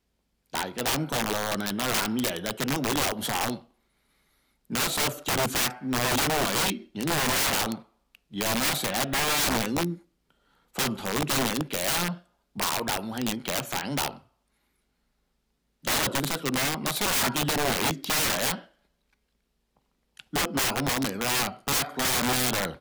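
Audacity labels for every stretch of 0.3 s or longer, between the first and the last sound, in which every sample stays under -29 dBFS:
3.550000	4.720000	silence
7.750000	8.360000	silence
9.940000	10.780000	silence
12.130000	12.580000	silence
14.090000	15.870000	silence
18.550000	20.200000	silence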